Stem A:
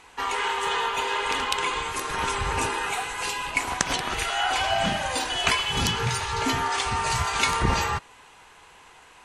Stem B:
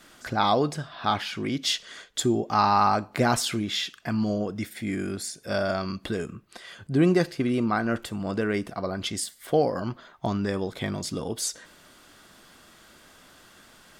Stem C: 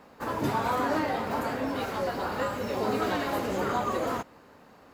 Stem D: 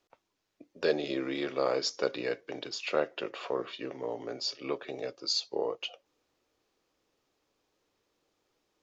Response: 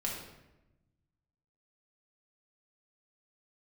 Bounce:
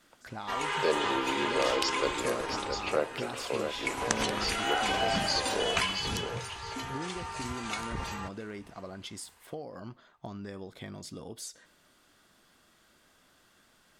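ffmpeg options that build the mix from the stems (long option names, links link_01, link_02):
-filter_complex "[0:a]adelay=300,volume=6.5dB,afade=type=out:start_time=2.1:duration=0.68:silence=0.266073,afade=type=in:start_time=3.58:duration=0.52:silence=0.251189,afade=type=out:start_time=5.6:duration=0.79:silence=0.375837,asplit=2[link_01][link_02];[link_02]volume=-23dB[link_03];[1:a]acompressor=threshold=-26dB:ratio=6,volume=-11dB[link_04];[2:a]adelay=1600,volume=-19dB[link_05];[3:a]volume=-1dB,asplit=2[link_06][link_07];[link_07]volume=-7dB[link_08];[link_03][link_08]amix=inputs=2:normalize=0,aecho=0:1:670|1340|2010|2680:1|0.27|0.0729|0.0197[link_09];[link_01][link_04][link_05][link_06][link_09]amix=inputs=5:normalize=0"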